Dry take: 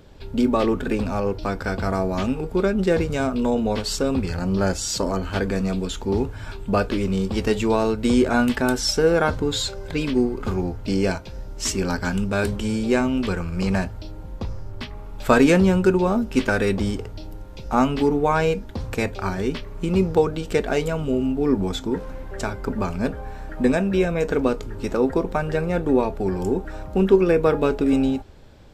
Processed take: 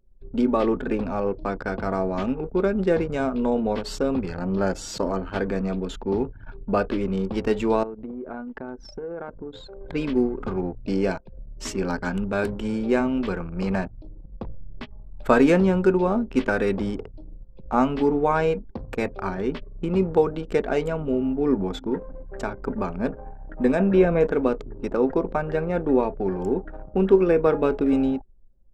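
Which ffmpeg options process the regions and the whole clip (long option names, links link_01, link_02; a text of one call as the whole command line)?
ffmpeg -i in.wav -filter_complex "[0:a]asettb=1/sr,asplit=3[link_01][link_02][link_03];[link_01]atrim=end=7.834[link_04];[link_02]atrim=start=7.83:end=9.81,asetpts=PTS-STARTPTS,afade=type=in:duration=0.004:curve=qsin,afade=type=out:start_time=1.976:duration=0.004:curve=qsin,lowpass=frequency=1400:poles=1,acompressor=threshold=-27dB:ratio=10:attack=3.2:release=140:knee=1:detection=peak,lowshelf=frequency=210:gain=-4.5[link_05];[link_03]atrim=start=9.806[link_06];[link_04][link_05]acrossfade=duration=0.004:curve1=hsin:curve2=qsin[link_07];[link_07][link_06]acrossfade=duration=0.004:curve1=qsin:curve2=hsin,asettb=1/sr,asplit=3[link_08][link_09][link_10];[link_08]atrim=end=23.794[link_11];[link_09]atrim=start=23.79:end=24.27,asetpts=PTS-STARTPTS,afade=type=in:duration=0.004:curve=qsin,afade=type=out:start_time=0.476:duration=0.004:curve=qsin,lowpass=frequency=2300:poles=1,acontrast=21[link_12];[link_10]atrim=start=24.266[link_13];[link_11][link_12]acrossfade=duration=0.004:curve1=hsin:curve2=qsin[link_14];[link_14][link_13]acrossfade=duration=0.004:curve1=qsin:curve2=hsin,equalizer=frequency=76:width_type=o:width=1.6:gain=-11,anlmdn=6.31,highshelf=frequency=2800:gain=-11.5" out.wav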